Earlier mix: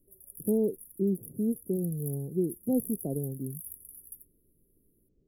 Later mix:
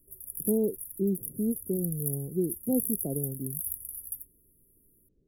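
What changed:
background +10.5 dB; master: add peaking EQ 6.2 kHz -9.5 dB 0.92 oct

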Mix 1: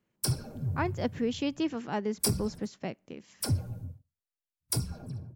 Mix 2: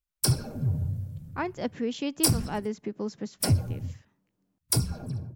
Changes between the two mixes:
speech: entry +0.60 s; background +5.5 dB

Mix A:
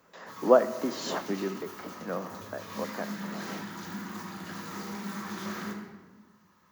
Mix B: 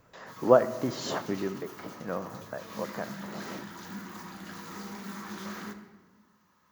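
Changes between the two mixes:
speech: remove steep high-pass 160 Hz 72 dB/octave; background: send -7.0 dB

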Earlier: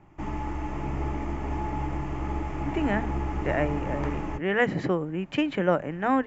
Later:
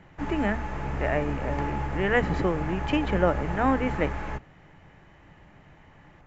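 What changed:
speech: entry -2.45 s; background: add graphic EQ with 31 bands 315 Hz -10 dB, 500 Hz +6 dB, 1.6 kHz +10 dB, 4 kHz +8 dB

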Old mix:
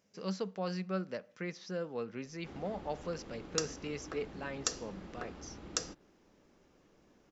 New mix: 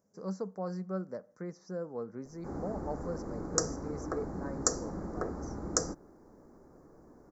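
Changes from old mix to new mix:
background +10.0 dB; master: add Butterworth band-stop 3 kHz, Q 0.54

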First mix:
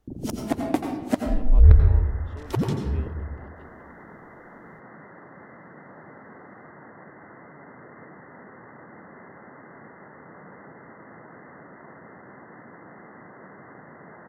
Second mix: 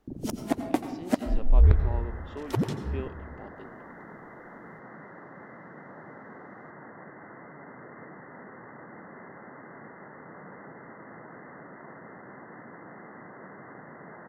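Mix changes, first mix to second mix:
speech +5.5 dB; first sound: send -7.0 dB; master: add peaking EQ 80 Hz -5 dB 0.68 oct

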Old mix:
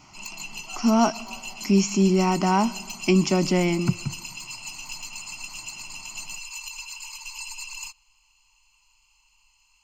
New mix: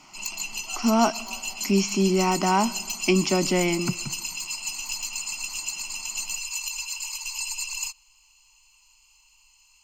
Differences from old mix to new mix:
speech: add band-pass 200–4200 Hz; master: add treble shelf 4.1 kHz +9.5 dB

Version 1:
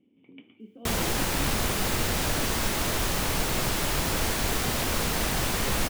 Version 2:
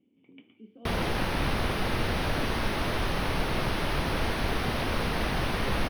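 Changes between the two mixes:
speech -3.5 dB; background: add boxcar filter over 6 samples

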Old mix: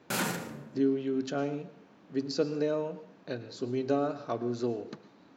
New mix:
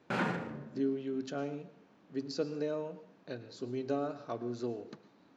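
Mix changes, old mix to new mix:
speech -5.5 dB; background: add low-pass 2.2 kHz 12 dB/octave

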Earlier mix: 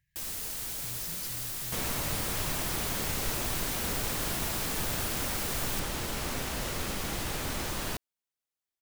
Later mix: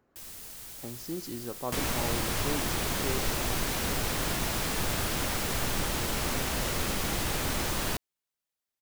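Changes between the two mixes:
speech: remove brick-wall FIR band-stop 170–1600 Hz; first sound -7.5 dB; second sound +3.5 dB

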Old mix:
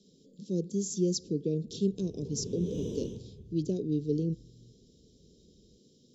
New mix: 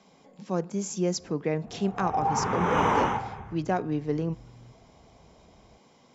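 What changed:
background +5.5 dB; master: remove elliptic band-stop 430–3700 Hz, stop band 40 dB

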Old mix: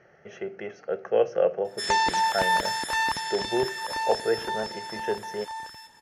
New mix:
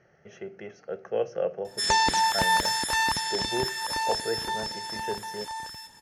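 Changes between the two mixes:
speech -6.0 dB; master: add tone controls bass +6 dB, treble +6 dB

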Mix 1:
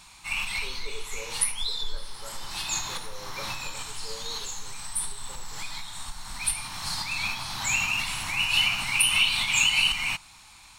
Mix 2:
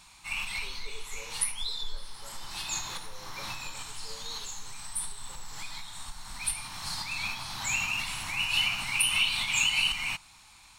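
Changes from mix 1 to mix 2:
speech -8.0 dB; background -4.0 dB

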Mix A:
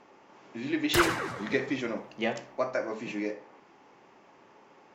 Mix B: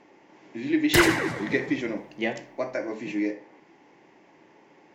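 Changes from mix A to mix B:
background +5.5 dB; master: add graphic EQ with 31 bands 160 Hz +5 dB, 315 Hz +8 dB, 1.25 kHz -9 dB, 2 kHz +6 dB

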